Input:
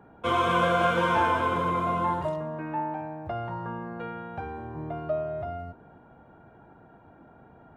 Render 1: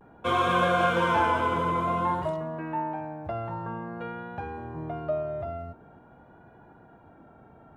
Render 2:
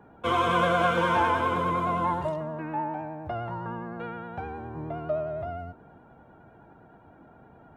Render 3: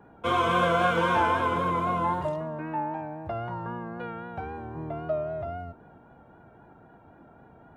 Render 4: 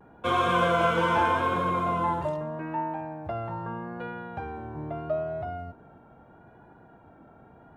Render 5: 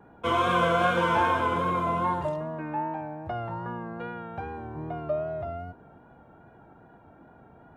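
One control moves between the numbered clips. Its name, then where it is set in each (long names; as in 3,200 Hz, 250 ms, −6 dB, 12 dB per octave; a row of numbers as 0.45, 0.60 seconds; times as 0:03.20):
pitch vibrato, speed: 0.5, 9.7, 3.8, 0.79, 2.5 Hertz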